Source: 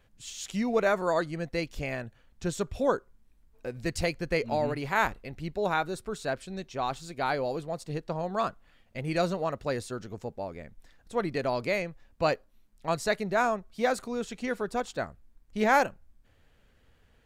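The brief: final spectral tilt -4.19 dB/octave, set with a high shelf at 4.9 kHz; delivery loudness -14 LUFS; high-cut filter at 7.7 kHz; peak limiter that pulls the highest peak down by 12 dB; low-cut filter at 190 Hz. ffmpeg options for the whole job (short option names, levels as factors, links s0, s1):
-af "highpass=190,lowpass=7700,highshelf=f=4900:g=-5,volume=11.2,alimiter=limit=0.891:level=0:latency=1"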